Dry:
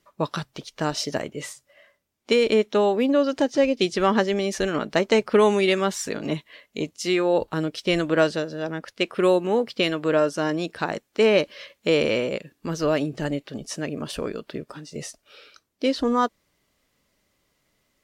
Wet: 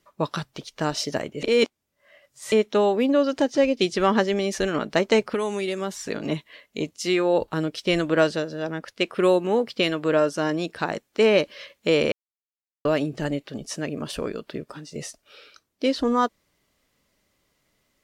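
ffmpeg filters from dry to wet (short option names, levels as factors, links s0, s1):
-filter_complex "[0:a]asettb=1/sr,asplit=3[s0][s1][s2];[s0]atrim=end=5.234[s3];[s1]atrim=start=5.23:end=6.09,asetpts=PTS-STARTPTS,afade=t=in:d=0.004:c=qsin,afade=t=out:st=0.856:d=0.004:c=qsin,acrossover=split=860|6100[s4][s5][s6];[s4]acompressor=threshold=0.0501:ratio=4[s7];[s5]acompressor=threshold=0.0178:ratio=4[s8];[s6]acompressor=threshold=0.00794:ratio=4[s9];[s7][s8][s9]amix=inputs=3:normalize=0[s10];[s2]atrim=start=6.086[s11];[s3][s10]acrossfade=d=0.004:c1=hsin:c2=qsin[s12];[s12][s11]acrossfade=d=0.004:c1=qsin:c2=hsin,asplit=5[s13][s14][s15][s16][s17];[s13]atrim=end=1.432[s18];[s14]atrim=start=1.428:end=2.522,asetpts=PTS-STARTPTS,areverse[s19];[s15]atrim=start=2.518:end=12.12,asetpts=PTS-STARTPTS,afade=t=out:st=9.598:d=0.004:c=hsin[s20];[s16]atrim=start=12.12:end=12.85,asetpts=PTS-STARTPTS,volume=0[s21];[s17]atrim=start=12.85,asetpts=PTS-STARTPTS,afade=t=in:d=0.004:c=hsin[s22];[s18][s19]acrossfade=d=0.004:c1=hsin:c2=hsin[s23];[s20][s21][s22]concat=n=3:v=0:a=1[s24];[s23][s24]acrossfade=d=0.004:c1=hsin:c2=hsin"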